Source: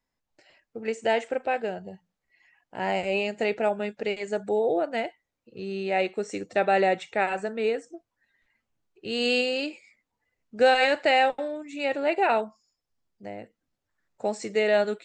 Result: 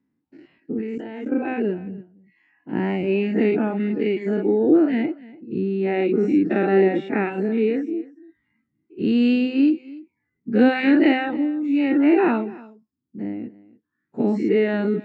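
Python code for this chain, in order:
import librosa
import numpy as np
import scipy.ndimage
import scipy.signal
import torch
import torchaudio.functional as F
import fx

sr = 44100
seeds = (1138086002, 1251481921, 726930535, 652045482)

p1 = fx.spec_dilate(x, sr, span_ms=120)
p2 = fx.bandpass_edges(p1, sr, low_hz=150.0, high_hz=2200.0)
p3 = fx.dereverb_blind(p2, sr, rt60_s=0.82)
p4 = fx.level_steps(p3, sr, step_db=17, at=(0.78, 1.32))
p5 = fx.low_shelf_res(p4, sr, hz=420.0, db=12.0, q=3.0)
p6 = p5 + fx.echo_single(p5, sr, ms=291, db=-20.5, dry=0)
y = F.gain(torch.from_numpy(p6), -1.5).numpy()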